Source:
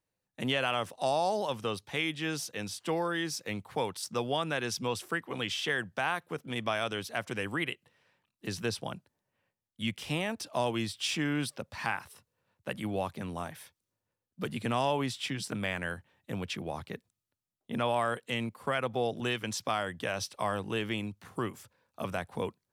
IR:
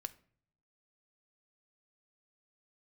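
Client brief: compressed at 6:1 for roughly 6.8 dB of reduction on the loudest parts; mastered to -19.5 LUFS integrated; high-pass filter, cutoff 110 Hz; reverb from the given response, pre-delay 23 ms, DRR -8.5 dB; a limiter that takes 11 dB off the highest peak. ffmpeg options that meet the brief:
-filter_complex "[0:a]highpass=110,acompressor=threshold=0.0251:ratio=6,alimiter=level_in=1.78:limit=0.0631:level=0:latency=1,volume=0.562,asplit=2[s0][s1];[1:a]atrim=start_sample=2205,adelay=23[s2];[s1][s2]afir=irnorm=-1:irlink=0,volume=3.76[s3];[s0][s3]amix=inputs=2:normalize=0,volume=3.98"

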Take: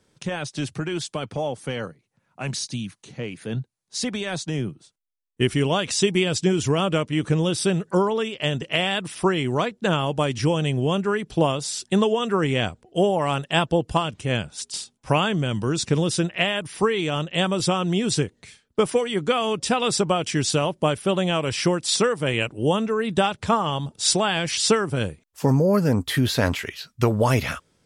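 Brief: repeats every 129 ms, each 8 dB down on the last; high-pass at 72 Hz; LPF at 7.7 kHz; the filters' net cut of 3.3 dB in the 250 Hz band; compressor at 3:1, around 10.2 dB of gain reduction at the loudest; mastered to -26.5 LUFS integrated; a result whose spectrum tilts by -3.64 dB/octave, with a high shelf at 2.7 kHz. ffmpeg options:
-af "highpass=72,lowpass=7700,equalizer=f=250:t=o:g=-5,highshelf=f=2700:g=5,acompressor=threshold=0.0316:ratio=3,aecho=1:1:129|258|387|516|645:0.398|0.159|0.0637|0.0255|0.0102,volume=1.68"

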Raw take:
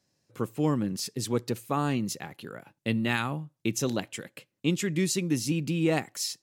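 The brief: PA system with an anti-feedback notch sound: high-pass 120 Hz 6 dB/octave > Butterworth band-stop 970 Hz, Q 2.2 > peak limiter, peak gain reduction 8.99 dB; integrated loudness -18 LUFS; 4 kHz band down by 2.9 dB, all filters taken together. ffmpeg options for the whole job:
-af "highpass=f=120:p=1,asuperstop=centerf=970:order=8:qfactor=2.2,equalizer=f=4000:t=o:g=-4,volume=6.31,alimiter=limit=0.447:level=0:latency=1"

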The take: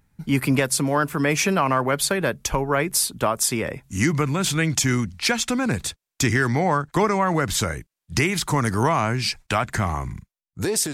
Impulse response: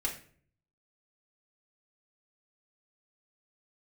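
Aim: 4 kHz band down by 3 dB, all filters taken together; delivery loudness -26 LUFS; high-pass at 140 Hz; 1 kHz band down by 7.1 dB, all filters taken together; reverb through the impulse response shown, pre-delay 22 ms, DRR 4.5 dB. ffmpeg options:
-filter_complex "[0:a]highpass=140,equalizer=f=1000:t=o:g=-9,equalizer=f=4000:t=o:g=-3.5,asplit=2[s0][s1];[1:a]atrim=start_sample=2205,adelay=22[s2];[s1][s2]afir=irnorm=-1:irlink=0,volume=0.398[s3];[s0][s3]amix=inputs=2:normalize=0,volume=0.75"

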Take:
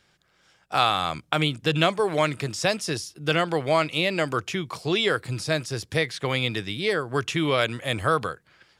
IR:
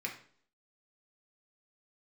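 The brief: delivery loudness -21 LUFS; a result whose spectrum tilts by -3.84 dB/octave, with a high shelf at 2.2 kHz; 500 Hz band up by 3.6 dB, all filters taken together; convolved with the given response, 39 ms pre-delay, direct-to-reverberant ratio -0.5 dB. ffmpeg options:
-filter_complex "[0:a]equalizer=f=500:t=o:g=4,highshelf=f=2200:g=6.5,asplit=2[s0][s1];[1:a]atrim=start_sample=2205,adelay=39[s2];[s1][s2]afir=irnorm=-1:irlink=0,volume=0.794[s3];[s0][s3]amix=inputs=2:normalize=0,volume=0.841"

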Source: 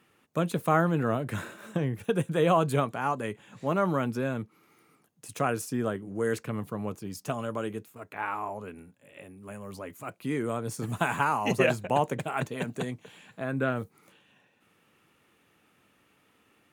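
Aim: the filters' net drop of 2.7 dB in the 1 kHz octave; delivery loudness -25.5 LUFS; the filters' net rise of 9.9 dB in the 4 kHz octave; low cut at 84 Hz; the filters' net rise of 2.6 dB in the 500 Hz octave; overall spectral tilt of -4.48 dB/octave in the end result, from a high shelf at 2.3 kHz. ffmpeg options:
-af "highpass=84,equalizer=f=500:t=o:g=4.5,equalizer=f=1000:t=o:g=-7.5,highshelf=f=2300:g=8.5,equalizer=f=4000:t=o:g=6.5,volume=1.41"

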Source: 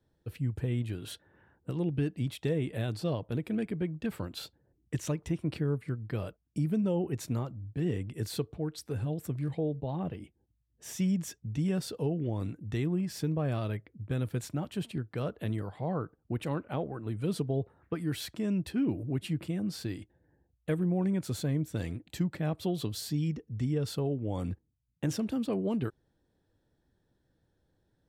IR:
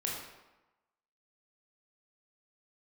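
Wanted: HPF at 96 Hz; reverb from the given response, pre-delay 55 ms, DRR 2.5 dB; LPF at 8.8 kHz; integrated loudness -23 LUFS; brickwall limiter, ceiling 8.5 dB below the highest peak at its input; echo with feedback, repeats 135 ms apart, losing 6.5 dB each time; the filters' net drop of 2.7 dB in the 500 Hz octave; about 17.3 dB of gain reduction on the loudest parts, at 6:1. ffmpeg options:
-filter_complex "[0:a]highpass=96,lowpass=8800,equalizer=f=500:t=o:g=-3.5,acompressor=threshold=0.00501:ratio=6,alimiter=level_in=7.08:limit=0.0631:level=0:latency=1,volume=0.141,aecho=1:1:135|270|405|540|675|810:0.473|0.222|0.105|0.0491|0.0231|0.0109,asplit=2[s0][s1];[1:a]atrim=start_sample=2205,adelay=55[s2];[s1][s2]afir=irnorm=-1:irlink=0,volume=0.501[s3];[s0][s3]amix=inputs=2:normalize=0,volume=16.8"

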